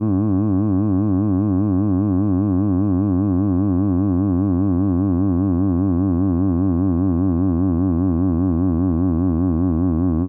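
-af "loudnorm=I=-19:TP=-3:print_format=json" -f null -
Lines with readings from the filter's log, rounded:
"input_i" : "-18.5",
"input_tp" : "-9.6",
"input_lra" : "0.4",
"input_thresh" : "-28.5",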